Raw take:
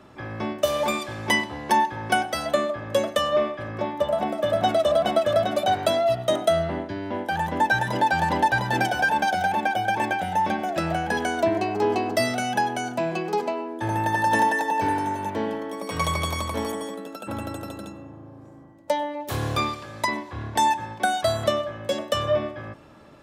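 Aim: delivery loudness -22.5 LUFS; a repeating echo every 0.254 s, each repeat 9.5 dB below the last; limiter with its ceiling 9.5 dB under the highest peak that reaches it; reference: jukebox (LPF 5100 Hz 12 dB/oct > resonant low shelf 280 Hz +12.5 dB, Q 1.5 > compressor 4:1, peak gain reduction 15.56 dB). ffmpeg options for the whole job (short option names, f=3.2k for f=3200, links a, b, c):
-af "alimiter=limit=-16.5dB:level=0:latency=1,lowpass=5.1k,lowshelf=f=280:t=q:w=1.5:g=12.5,aecho=1:1:254|508|762|1016:0.335|0.111|0.0365|0.012,acompressor=threshold=-30dB:ratio=4,volume=10dB"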